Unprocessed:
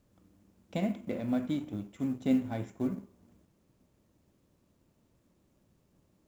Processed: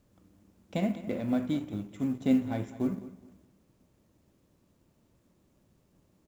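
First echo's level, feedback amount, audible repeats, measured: -16.0 dB, 26%, 2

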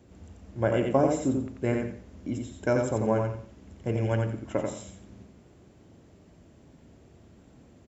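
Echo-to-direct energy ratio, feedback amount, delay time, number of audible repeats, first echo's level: -3.5 dB, 26%, 88 ms, 3, -4.0 dB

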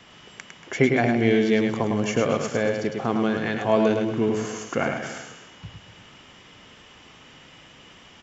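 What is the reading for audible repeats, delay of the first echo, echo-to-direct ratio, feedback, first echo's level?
3, 0.105 s, -4.0 dB, no steady repeat, -5.0 dB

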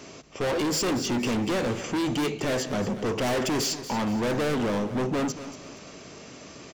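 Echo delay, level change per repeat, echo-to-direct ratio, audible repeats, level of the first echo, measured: 0.235 s, -8.0 dB, -12.5 dB, 3, -13.0 dB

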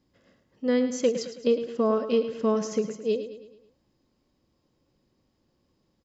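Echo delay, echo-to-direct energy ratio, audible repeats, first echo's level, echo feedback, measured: 0.108 s, -10.0 dB, 4, -11.0 dB, 48%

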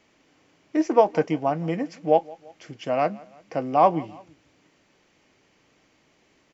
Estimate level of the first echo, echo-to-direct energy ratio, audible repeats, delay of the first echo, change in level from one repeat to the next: -23.0 dB, -22.0 dB, 2, 0.17 s, -6.0 dB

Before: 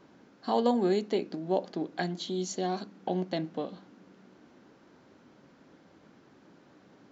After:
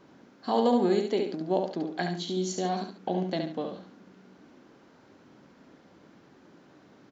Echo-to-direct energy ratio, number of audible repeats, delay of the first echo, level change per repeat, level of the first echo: -5.0 dB, 2, 70 ms, -10.0 dB, -5.5 dB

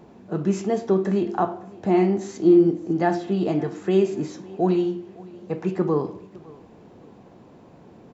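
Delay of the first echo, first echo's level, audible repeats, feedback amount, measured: 0.559 s, -22.0 dB, 2, 33%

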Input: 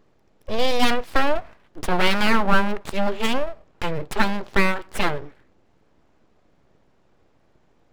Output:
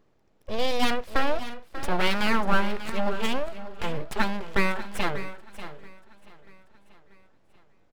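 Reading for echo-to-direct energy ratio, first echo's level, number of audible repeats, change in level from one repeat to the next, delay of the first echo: -12.0 dB, -13.0 dB, 5, no steady repeat, 0.59 s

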